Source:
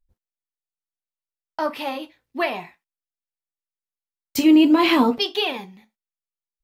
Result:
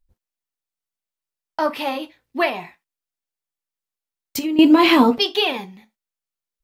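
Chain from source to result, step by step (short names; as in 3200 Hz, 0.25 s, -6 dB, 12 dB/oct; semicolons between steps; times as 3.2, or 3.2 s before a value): 2.49–4.59 compressor 4:1, threshold -28 dBFS, peak gain reduction 14.5 dB; gain +3.5 dB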